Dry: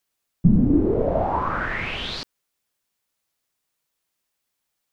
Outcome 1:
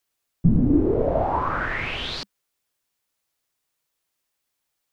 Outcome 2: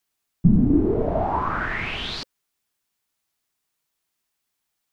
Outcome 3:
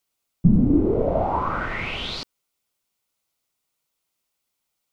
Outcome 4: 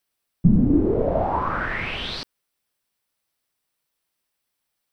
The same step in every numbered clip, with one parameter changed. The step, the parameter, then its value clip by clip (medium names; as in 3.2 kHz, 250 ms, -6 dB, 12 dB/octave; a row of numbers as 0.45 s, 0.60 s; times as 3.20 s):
band-stop, frequency: 200 Hz, 530 Hz, 1.7 kHz, 6.8 kHz